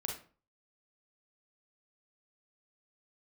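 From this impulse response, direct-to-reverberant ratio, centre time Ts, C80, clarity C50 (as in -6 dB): 0.0 dB, 30 ms, 12.0 dB, 5.0 dB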